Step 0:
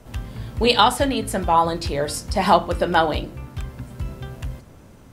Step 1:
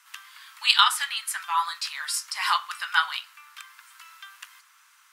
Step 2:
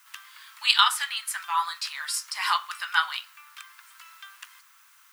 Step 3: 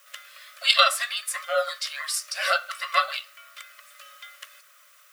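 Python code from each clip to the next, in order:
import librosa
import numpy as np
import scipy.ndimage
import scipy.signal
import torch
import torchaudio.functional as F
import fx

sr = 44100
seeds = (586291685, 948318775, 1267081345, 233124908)

y1 = scipy.signal.sosfilt(scipy.signal.butter(8, 1100.0, 'highpass', fs=sr, output='sos'), x)
y1 = F.gain(torch.from_numpy(y1), 1.0).numpy()
y2 = fx.dmg_noise_colour(y1, sr, seeds[0], colour='violet', level_db=-60.0)
y2 = F.gain(torch.from_numpy(y2), -1.0).numpy()
y3 = fx.band_invert(y2, sr, width_hz=500)
y3 = F.gain(torch.from_numpy(y3), 1.5).numpy()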